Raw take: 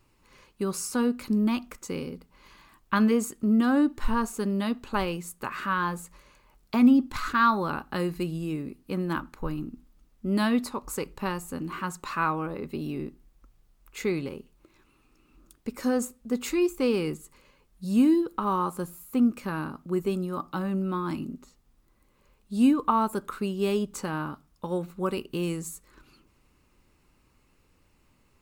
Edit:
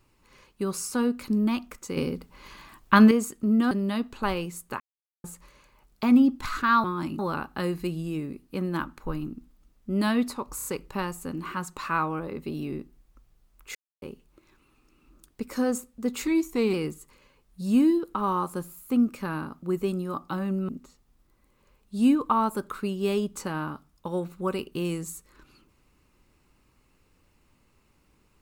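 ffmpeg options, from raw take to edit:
ffmpeg -i in.wav -filter_complex "[0:a]asplit=16[link_01][link_02][link_03][link_04][link_05][link_06][link_07][link_08][link_09][link_10][link_11][link_12][link_13][link_14][link_15][link_16];[link_01]atrim=end=1.972[link_17];[link_02]atrim=start=1.968:end=3.112,asetpts=PTS-STARTPTS,volume=7dB[link_18];[link_03]atrim=start=3.108:end=3.712[link_19];[link_04]atrim=start=4.418:end=5.51,asetpts=PTS-STARTPTS,afade=type=out:start_time=1.088:duration=0.004:curve=hsin[link_20];[link_05]atrim=start=5.51:end=5.95,asetpts=PTS-STARTPTS,volume=0[link_21];[link_06]atrim=start=5.95:end=7.552,asetpts=PTS-STARTPTS,afade=type=in:duration=0.004:curve=hsin[link_22];[link_07]atrim=start=20.918:end=21.272[link_23];[link_08]atrim=start=7.548:end=10.952[link_24];[link_09]atrim=start=10.918:end=10.952[link_25];[link_10]atrim=start=10.918:end=10.952[link_26];[link_11]atrim=start=10.918:end=14.02,asetpts=PTS-STARTPTS,afade=type=out:start_time=3.098:duration=0.004:curve=hsin[link_27];[link_12]atrim=start=14.02:end=14.29,asetpts=PTS-STARTPTS,volume=0[link_28];[link_13]atrim=start=14.29:end=16.544,asetpts=PTS-STARTPTS,afade=type=in:duration=0.004:curve=hsin[link_29];[link_14]atrim=start=16.54:end=16.97,asetpts=PTS-STARTPTS,asetrate=40572,aresample=44100[link_30];[link_15]atrim=start=16.966:end=20.922[link_31];[link_16]atrim=start=21.268[link_32];[link_17][link_18]acrossfade=duration=0.004:curve1=hsin:curve2=hsin[link_33];[link_33][link_19]acrossfade=duration=0.004:curve1=hsin:curve2=hsin[link_34];[link_20][link_21][link_22]concat=n=3:v=0:a=1[link_35];[link_34][link_35]acrossfade=duration=0.004:curve1=hsin:curve2=hsin[link_36];[link_36][link_23]acrossfade=duration=0.004:curve1=hsin:curve2=hsin[link_37];[link_37][link_24]acrossfade=duration=0.004:curve1=hsin:curve2=hsin[link_38];[link_38][link_25]acrossfade=duration=0.004:curve1=hsin:curve2=hsin[link_39];[link_39][link_26]acrossfade=duration=0.004:curve1=hsin:curve2=hsin[link_40];[link_27][link_28][link_29]concat=n=3:v=0:a=1[link_41];[link_40][link_41]acrossfade=duration=0.004:curve1=hsin:curve2=hsin[link_42];[link_42][link_30]acrossfade=duration=0.004:curve1=hsin:curve2=hsin[link_43];[link_43][link_31]acrossfade=duration=0.004:curve1=hsin:curve2=hsin[link_44];[link_44][link_32]acrossfade=duration=0.004:curve1=hsin:curve2=hsin" out.wav

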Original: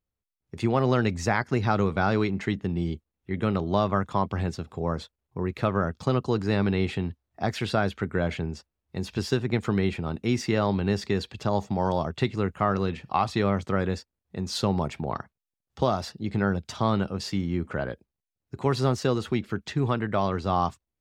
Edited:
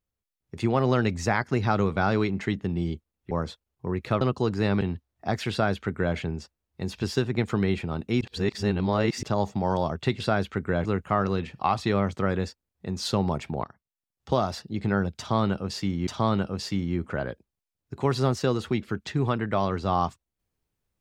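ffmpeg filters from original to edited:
ffmpeg -i in.wav -filter_complex "[0:a]asplit=10[link_01][link_02][link_03][link_04][link_05][link_06][link_07][link_08][link_09][link_10];[link_01]atrim=end=3.312[link_11];[link_02]atrim=start=4.828:end=5.732[link_12];[link_03]atrim=start=6.088:end=6.692[link_13];[link_04]atrim=start=6.958:end=10.362[link_14];[link_05]atrim=start=10.358:end=11.382,asetpts=PTS-STARTPTS,areverse[link_15];[link_06]atrim=start=11.378:end=12.352[link_16];[link_07]atrim=start=7.658:end=8.312[link_17];[link_08]atrim=start=12.348:end=15.14,asetpts=PTS-STARTPTS,afade=type=out:start_time=2.788:duration=0.004:curve=hsin:silence=0.149624[link_18];[link_09]atrim=start=15.14:end=17.572,asetpts=PTS-STARTPTS,afade=type=in:duration=0.7:silence=0.149624[link_19];[link_10]atrim=start=16.678[link_20];[link_11][link_12]acrossfade=duration=0.004:curve1=hsin:curve2=hsin[link_21];[link_21][link_13]acrossfade=duration=0.004:curve1=hsin:curve2=hsin[link_22];[link_22][link_14]acrossfade=duration=0.004:curve1=hsin:curve2=hsin[link_23];[link_23][link_15]acrossfade=duration=0.004:curve1=hsin:curve2=hsin[link_24];[link_24][link_16]acrossfade=duration=0.004:curve1=hsin:curve2=hsin[link_25];[link_25][link_17]acrossfade=duration=0.004:curve1=hsin:curve2=hsin[link_26];[link_18][link_19]concat=n=2:v=0:a=1[link_27];[link_26][link_27]acrossfade=duration=0.004:curve1=hsin:curve2=hsin[link_28];[link_28][link_20]acrossfade=duration=0.004:curve1=hsin:curve2=hsin" out.wav

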